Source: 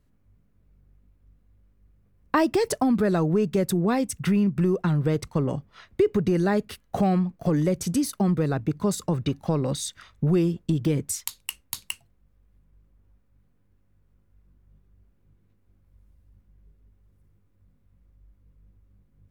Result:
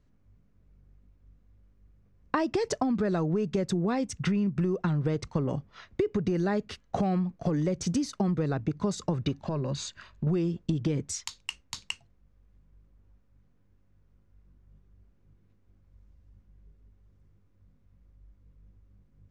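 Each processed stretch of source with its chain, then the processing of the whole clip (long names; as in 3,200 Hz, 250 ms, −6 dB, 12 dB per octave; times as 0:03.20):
0:09.41–0:10.27: EQ curve with evenly spaced ripples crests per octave 1.4, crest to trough 8 dB + downward compressor 3 to 1, threshold −28 dBFS + linearly interpolated sample-rate reduction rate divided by 3×
whole clip: Chebyshev low-pass filter 6,500 Hz, order 3; downward compressor, threshold −24 dBFS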